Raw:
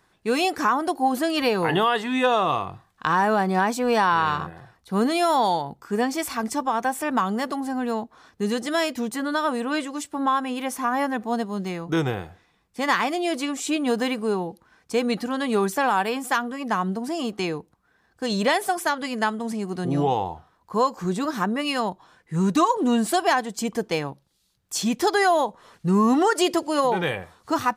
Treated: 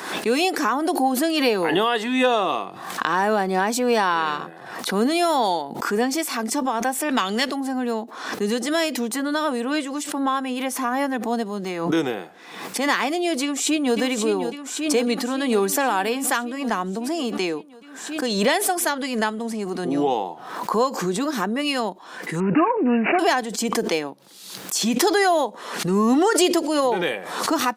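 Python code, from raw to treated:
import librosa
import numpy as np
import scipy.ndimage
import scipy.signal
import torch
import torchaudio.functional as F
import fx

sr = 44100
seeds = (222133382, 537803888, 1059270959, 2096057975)

y = fx.weighting(x, sr, curve='D', at=(7.09, 7.51))
y = fx.echo_throw(y, sr, start_s=13.41, length_s=0.56, ms=550, feedback_pct=70, wet_db=-8.0)
y = fx.resample_bad(y, sr, factor=8, down='none', up='filtered', at=(22.4, 23.19))
y = scipy.signal.sosfilt(scipy.signal.butter(4, 220.0, 'highpass', fs=sr, output='sos'), y)
y = fx.dynamic_eq(y, sr, hz=1100.0, q=1.1, threshold_db=-35.0, ratio=4.0, max_db=-5)
y = fx.pre_swell(y, sr, db_per_s=59.0)
y = y * 10.0 ** (3.0 / 20.0)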